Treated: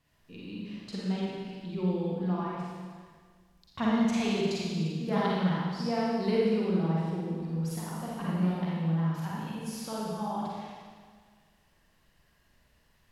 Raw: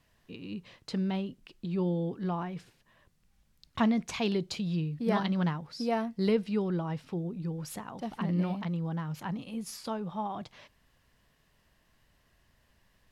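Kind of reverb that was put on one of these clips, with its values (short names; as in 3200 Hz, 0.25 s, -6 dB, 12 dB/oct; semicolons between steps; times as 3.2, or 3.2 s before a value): Schroeder reverb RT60 1.7 s, DRR -6 dB; gain -5.5 dB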